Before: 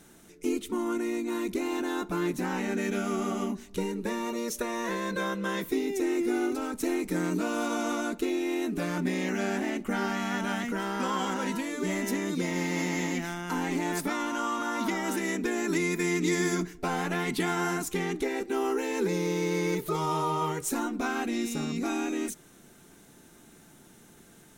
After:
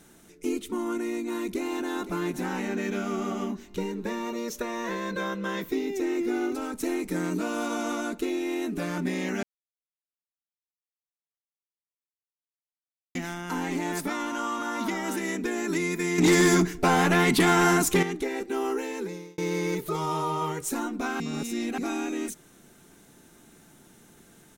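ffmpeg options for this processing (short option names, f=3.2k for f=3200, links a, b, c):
-filter_complex "[0:a]asplit=2[a][b];[b]afade=t=in:st=1.42:d=0.01,afade=t=out:st=2.06:d=0.01,aecho=0:1:510|1020|1530|2040|2550|3060:0.237137|0.130426|0.0717341|0.0394537|0.0216996|0.0119348[c];[a][c]amix=inputs=2:normalize=0,asettb=1/sr,asplit=3[d][e][f];[d]atrim=end=2.684[g];[e]atrim=start=2.68:end=6.54,asetpts=PTS-STARTPTS,afade=t=in:d=0.004:c=qsin,afade=t=out:st=3.856:d=0.004:c=qsin,equalizer=f=9.9k:w=1.5:g=-9[h];[f]atrim=start=6.536[i];[g][h]acrossfade=d=0.004:c1=hsin:c2=qsin[j];[j][i]acrossfade=d=0.004:c1=qsin:c2=hsin,asettb=1/sr,asplit=3[k][l][m];[k]atrim=end=16.184[n];[l]atrim=start=16.18:end=18.03,asetpts=PTS-STARTPTS,afade=t=in:d=0.004:c=qsin,afade=t=out:st=1.846:d=0.004:c=qsin,aeval=exprs='0.188*sin(PI/2*2*val(0)/0.188)':c=same[o];[m]atrim=start=18.026[p];[n][o]acrossfade=d=0.004:c1=hsin:c2=qsin[q];[q][p]acrossfade=d=0.004:c1=qsin:c2=hsin,asplit=6[r][s][t][u][v][w];[r]atrim=end=9.43,asetpts=PTS-STARTPTS,afade=t=out:st=9.426:d=0.004:c=hsin[x];[s]atrim=start=9.43:end=13.15,asetpts=PTS-STARTPTS,volume=0[y];[t]atrim=start=13.15:end=19.38,asetpts=PTS-STARTPTS,afade=t=in:d=0.004:c=hsin,afade=t=out:st=5.59:d=0.64[z];[u]atrim=start=19.38:end=21.202,asetpts=PTS-STARTPTS,afade=t=in:d=0.004:c=hsin[aa];[v]atrim=start=21.198:end=21.782,asetpts=PTS-STARTPTS,areverse[ab];[w]atrim=start=21.778[ac];[x][y][z][aa]concat=n=4:v=0:a=1[ad];[ad][ab]acrossfade=d=0.004:c1=hsin:c2=hsin[ae];[ae][ac]acrossfade=d=0.004:c1=hsin:c2=hsin"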